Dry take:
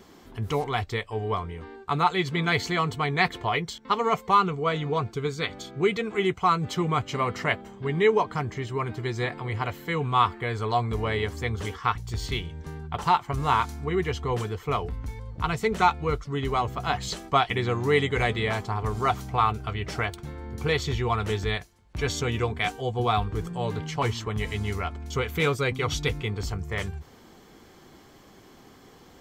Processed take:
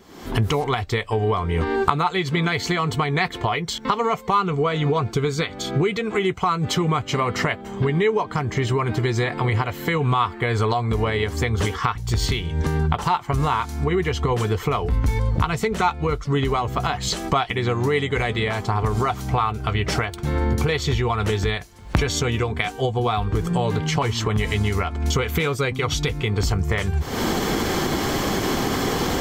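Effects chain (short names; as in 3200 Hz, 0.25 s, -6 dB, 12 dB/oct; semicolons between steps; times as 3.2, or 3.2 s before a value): recorder AGC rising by 61 dB/s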